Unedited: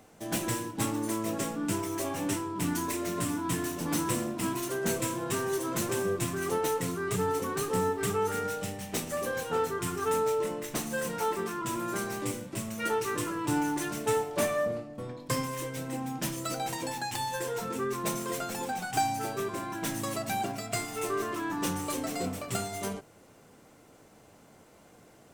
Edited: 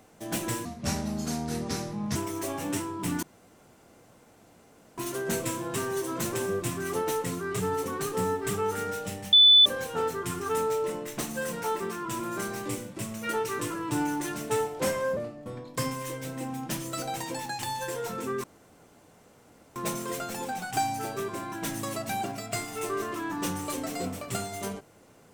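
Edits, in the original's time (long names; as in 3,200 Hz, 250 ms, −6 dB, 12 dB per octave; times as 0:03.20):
0:00.65–0:01.72: play speed 71%
0:02.79–0:04.54: fill with room tone
0:08.89–0:09.22: beep over 3,490 Hz −12.5 dBFS
0:14.36–0:14.69: play speed 89%
0:17.96: splice in room tone 1.32 s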